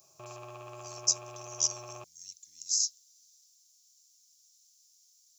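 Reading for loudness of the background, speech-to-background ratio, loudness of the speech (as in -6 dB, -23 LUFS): -47.0 LUFS, 17.0 dB, -30.0 LUFS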